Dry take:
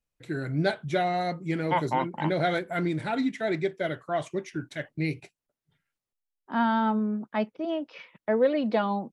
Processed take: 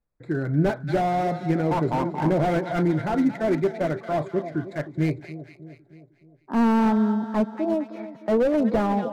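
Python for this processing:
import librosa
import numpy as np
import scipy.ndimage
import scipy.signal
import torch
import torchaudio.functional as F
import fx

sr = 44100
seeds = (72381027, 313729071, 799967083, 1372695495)

y = fx.wiener(x, sr, points=15)
y = fx.echo_split(y, sr, split_hz=780.0, low_ms=309, high_ms=227, feedback_pct=52, wet_db=-14)
y = fx.slew_limit(y, sr, full_power_hz=32.0)
y = y * 10.0 ** (6.0 / 20.0)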